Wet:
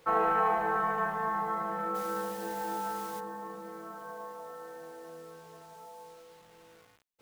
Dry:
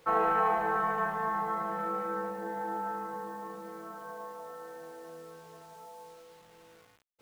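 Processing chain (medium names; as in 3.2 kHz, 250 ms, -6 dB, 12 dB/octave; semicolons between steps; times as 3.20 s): 1.94–3.19 s: added noise white -49 dBFS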